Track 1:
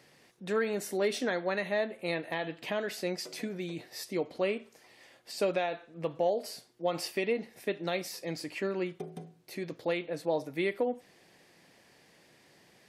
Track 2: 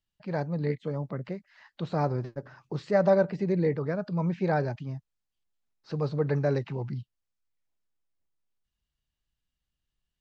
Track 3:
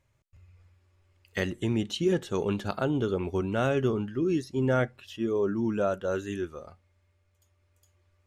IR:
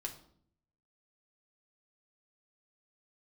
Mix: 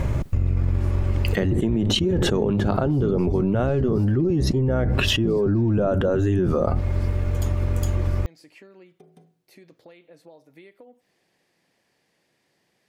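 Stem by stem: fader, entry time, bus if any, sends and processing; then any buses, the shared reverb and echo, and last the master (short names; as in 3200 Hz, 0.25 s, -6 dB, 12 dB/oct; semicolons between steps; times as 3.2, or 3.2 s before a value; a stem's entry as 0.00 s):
-8.5 dB, 0.00 s, no send, compressor, threshold -37 dBFS, peak gain reduction 12.5 dB
-12.0 dB, 0.90 s, no send, tilt +4 dB/oct; limiter -25 dBFS, peak gain reduction 11 dB
+1.0 dB, 0.00 s, no send, octaver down 1 oct, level -2 dB; tilt shelf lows +8 dB, about 1500 Hz; fast leveller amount 100%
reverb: off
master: compressor 4:1, threshold -19 dBFS, peak gain reduction 10 dB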